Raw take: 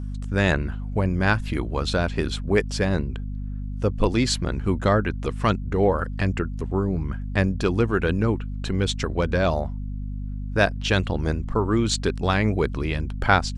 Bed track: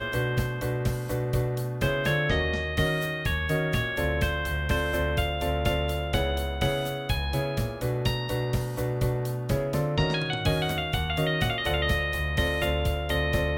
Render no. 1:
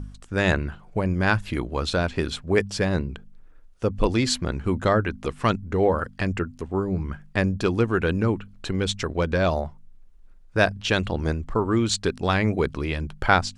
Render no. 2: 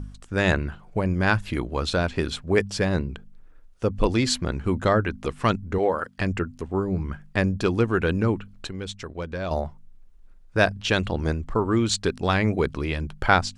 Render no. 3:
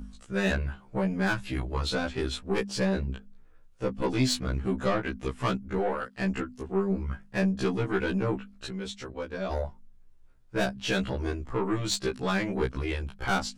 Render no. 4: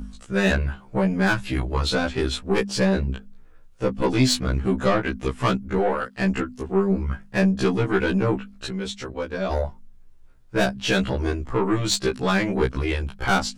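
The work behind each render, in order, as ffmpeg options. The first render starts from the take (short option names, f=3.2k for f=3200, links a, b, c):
-af "bandreject=f=50:t=h:w=4,bandreject=f=100:t=h:w=4,bandreject=f=150:t=h:w=4,bandreject=f=200:t=h:w=4,bandreject=f=250:t=h:w=4"
-filter_complex "[0:a]asettb=1/sr,asplit=3[a][b][c];[a]atrim=end=5.784[d];[b]atrim=start=5.78:end=6.18,asetpts=PTS-STARTPTS,afade=t=in:d=0.004:c=qsin,afade=t=out:st=0.396:d=0.004:c=qsin,highpass=f=370:p=1[e];[c]atrim=start=6.176[f];[d][e]acrossfade=d=0.004:c1=hsin:c2=qsin[g];[g][f]acrossfade=d=0.004:c1=qsin:c2=hsin,asplit=3[h][i][j];[h]atrim=end=8.672[k];[i]atrim=start=8.668:end=9.512,asetpts=PTS-STARTPTS,volume=-8.5dB[l];[j]atrim=start=9.508[m];[k][l]acrossfade=d=0.004:c1=hsin:c2=hsin[n];[n][m]acrossfade=d=0.004:c1=hsin:c2=hsin"
-af "aeval=exprs='(tanh(7.08*val(0)+0.25)-tanh(0.25))/7.08':c=same,afftfilt=real='re*1.73*eq(mod(b,3),0)':imag='im*1.73*eq(mod(b,3),0)':win_size=2048:overlap=0.75"
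-af "volume=6.5dB"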